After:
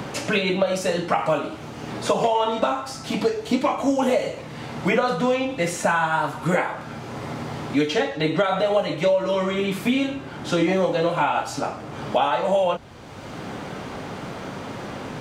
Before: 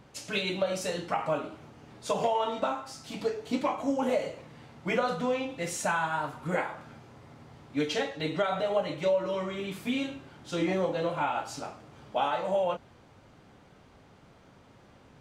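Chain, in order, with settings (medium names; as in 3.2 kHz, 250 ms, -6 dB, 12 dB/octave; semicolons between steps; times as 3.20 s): three bands compressed up and down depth 70%; trim +8 dB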